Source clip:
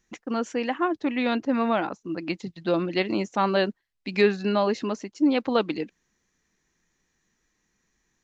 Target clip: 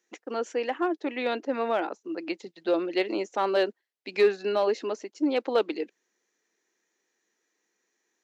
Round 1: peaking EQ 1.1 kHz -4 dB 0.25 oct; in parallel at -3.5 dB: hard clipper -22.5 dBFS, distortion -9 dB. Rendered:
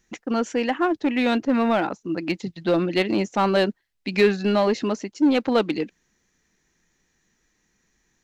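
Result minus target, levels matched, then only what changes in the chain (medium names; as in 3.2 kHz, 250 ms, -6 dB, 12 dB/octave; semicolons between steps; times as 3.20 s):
250 Hz band +4.5 dB
add first: ladder high-pass 310 Hz, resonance 35%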